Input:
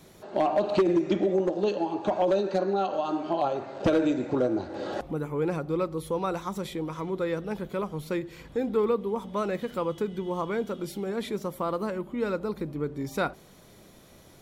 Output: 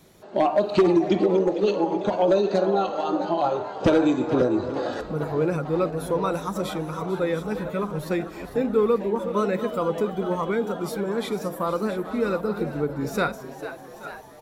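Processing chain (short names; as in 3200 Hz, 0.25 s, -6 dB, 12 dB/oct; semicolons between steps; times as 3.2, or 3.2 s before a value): regenerating reverse delay 0.414 s, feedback 46%, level -10 dB; spectral noise reduction 6 dB; frequency-shifting echo 0.447 s, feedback 64%, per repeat +110 Hz, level -14 dB; gain +4.5 dB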